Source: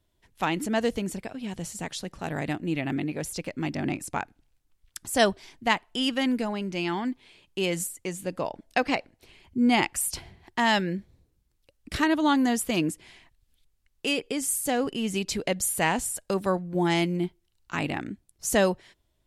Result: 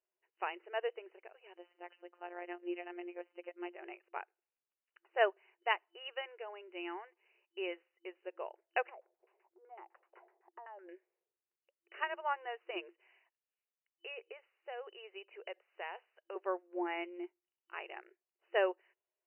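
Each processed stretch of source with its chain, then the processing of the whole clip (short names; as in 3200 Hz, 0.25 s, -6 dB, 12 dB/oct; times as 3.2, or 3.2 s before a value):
1.57–3.76 bell 640 Hz +4.5 dB 2.4 oct + robotiser 176 Hz
8.89–10.89 LFO low-pass saw down 7.9 Hz 510–1600 Hz + compressor, threshold -33 dBFS
12.92–16.36 HPF 390 Hz 24 dB/oct + compressor 2:1, threshold -29 dBFS
whole clip: FFT band-pass 340–3000 Hz; upward expander 1.5:1, over -35 dBFS; gain -6.5 dB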